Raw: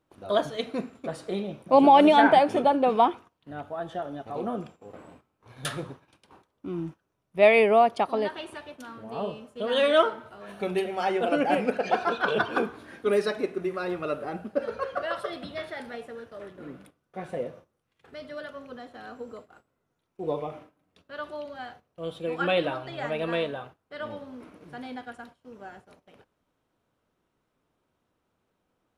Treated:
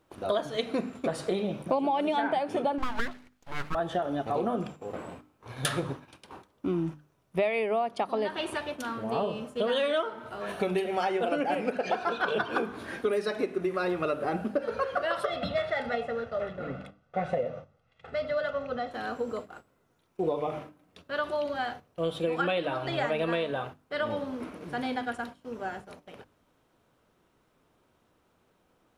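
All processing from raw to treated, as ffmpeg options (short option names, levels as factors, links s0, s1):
-filter_complex "[0:a]asettb=1/sr,asplit=3[s0][s1][s2];[s0]atrim=end=2.784[s3];[s1]atrim=start=2.78:end=3.75,asetpts=PTS-STARTPTS,afade=t=in:d=0.004:c=qsin,afade=t=out:st=0.966:d=0.004:c=qsin,highpass=f=310:w=0.5412,highpass=f=310:w=1.3066,aeval=exprs='abs(val(0))':c=same[s4];[s2]atrim=start=3.746[s5];[s3][s4]acrossfade=d=0.004:c1=hsin:c2=qsin[s6];[s6][s5]acrossfade=d=0.004:c1=qsin:c2=hsin,asettb=1/sr,asplit=3[s7][s8][s9];[s7]atrim=end=15.254[s10];[s8]atrim=start=15.25:end=18.91,asetpts=PTS-STARTPTS,afade=t=in:d=0.004:c=qsin,afade=t=out:st=3.656:d=0.004:c=qsin,highshelf=f=8400:g=-6.5,adynamicsmooth=sensitivity=6.5:basefreq=5200,aecho=1:1:1.5:0.66,atrim=end_sample=161406[s11];[s9]atrim=start=18.906[s12];[s10][s11]acrossfade=d=0.004:c1=hsin:c2=qsin[s13];[s13][s12]acrossfade=d=0.004:c1=qsin:c2=hsin,bandreject=f=50:t=h:w=6,bandreject=f=100:t=h:w=6,bandreject=f=150:t=h:w=6,bandreject=f=200:t=h:w=6,bandreject=f=250:t=h:w=6,bandreject=f=300:t=h:w=6,acompressor=threshold=0.0224:ratio=10,volume=2.51"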